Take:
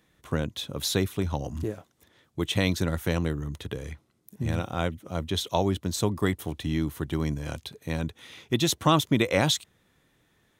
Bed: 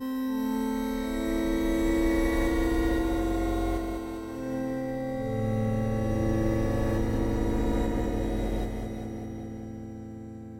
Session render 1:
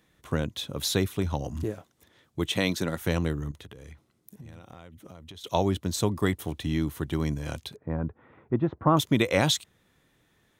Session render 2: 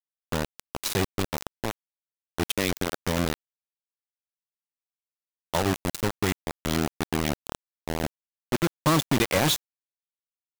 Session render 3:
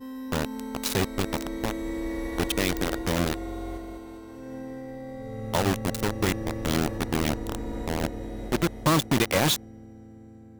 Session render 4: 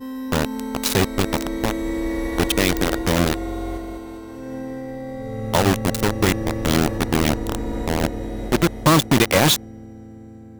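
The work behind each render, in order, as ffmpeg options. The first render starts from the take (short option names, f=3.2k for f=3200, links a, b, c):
-filter_complex "[0:a]asettb=1/sr,asplit=3[a][b][c];[a]atrim=end=2.514[d];[b]atrim=start=2.51:end=3.01,asetpts=PTS-STARTPTS,afade=t=in:d=0.004:c=qsin,afade=t=out:st=0.496:d=0.004:c=qsin,highpass=160[e];[c]atrim=start=3.006[f];[d][e]acrossfade=d=0.004:c1=hsin:c2=qsin[g];[g][f]acrossfade=d=0.004:c1=qsin:c2=hsin,asettb=1/sr,asplit=3[h][i][j];[h]atrim=end=3.514[k];[i]atrim=start=3.51:end=5.44,asetpts=PTS-STARTPTS,afade=t=in:d=0.004:c=qsin,afade=t=out:st=1.926:d=0.004:c=qsin,acompressor=threshold=-41dB:ratio=16:attack=3.2:release=140:knee=1:detection=peak[l];[j]atrim=start=5.436[m];[k][l]acrossfade=d=0.004:c1=hsin:c2=qsin[n];[n][m]acrossfade=d=0.004:c1=qsin:c2=hsin,asettb=1/sr,asplit=3[o][p][q];[o]atrim=end=7.764[r];[p]atrim=start=7.76:end=8.97,asetpts=PTS-STARTPTS,afade=t=in:d=0.004:c=qsin,afade=t=out:st=1.206:d=0.004:c=qsin,lowpass=f=1.4k:w=0.5412,lowpass=f=1.4k:w=1.3066[s];[q]atrim=start=8.966[t];[r][s]acrossfade=d=0.004:c1=hsin:c2=qsin[u];[u][t]acrossfade=d=0.004:c1=qsin:c2=hsin"
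-af "asoftclip=type=tanh:threshold=-11.5dB,acrusher=bits=3:mix=0:aa=0.000001"
-filter_complex "[1:a]volume=-6.5dB[a];[0:a][a]amix=inputs=2:normalize=0"
-af "volume=7dB"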